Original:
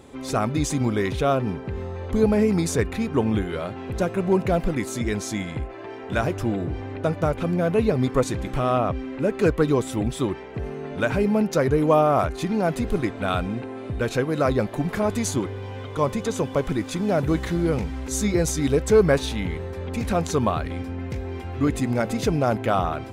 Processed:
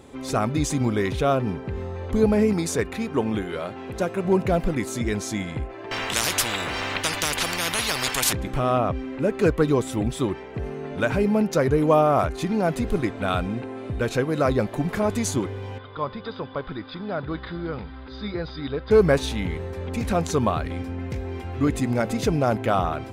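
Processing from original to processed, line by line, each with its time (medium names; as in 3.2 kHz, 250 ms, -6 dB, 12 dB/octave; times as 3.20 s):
2.53–4.25 s: bass shelf 140 Hz -10 dB
5.91–8.33 s: spectrum-flattening compressor 10:1
15.78–18.91 s: rippled Chebyshev low-pass 5 kHz, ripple 9 dB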